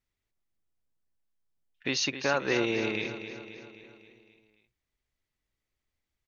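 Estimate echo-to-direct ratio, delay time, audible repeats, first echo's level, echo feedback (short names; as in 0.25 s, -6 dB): -9.0 dB, 0.265 s, 5, -10.5 dB, 56%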